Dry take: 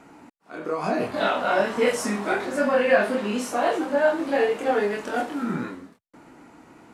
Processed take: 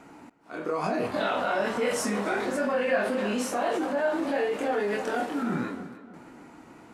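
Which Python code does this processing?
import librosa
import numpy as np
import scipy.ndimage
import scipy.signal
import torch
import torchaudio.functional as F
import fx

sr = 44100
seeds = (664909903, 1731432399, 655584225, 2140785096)

p1 = fx.echo_filtered(x, sr, ms=304, feedback_pct=39, hz=3800.0, wet_db=-14.5)
p2 = fx.over_compress(p1, sr, threshold_db=-27.0, ratio=-1.0)
p3 = p1 + (p2 * 10.0 ** (-0.5 / 20.0))
y = p3 * 10.0 ** (-8.0 / 20.0)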